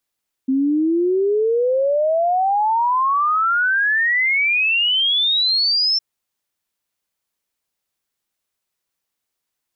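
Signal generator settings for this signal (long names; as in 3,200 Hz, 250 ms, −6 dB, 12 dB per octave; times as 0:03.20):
exponential sine sweep 260 Hz → 5,400 Hz 5.51 s −14.5 dBFS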